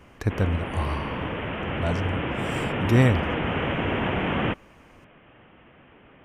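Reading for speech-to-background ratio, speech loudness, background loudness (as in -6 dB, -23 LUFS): 1.5 dB, -26.5 LUFS, -28.0 LUFS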